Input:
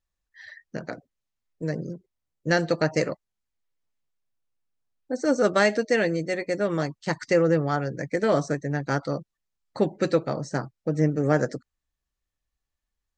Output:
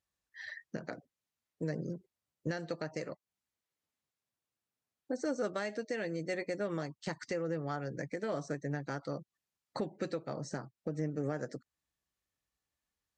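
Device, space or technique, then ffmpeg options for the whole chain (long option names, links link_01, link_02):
podcast mastering chain: -af "highpass=96,acompressor=threshold=-35dB:ratio=2.5,alimiter=level_in=0.5dB:limit=-24dB:level=0:latency=1:release=464,volume=-0.5dB" -ar 32000 -c:a libmp3lame -b:a 96k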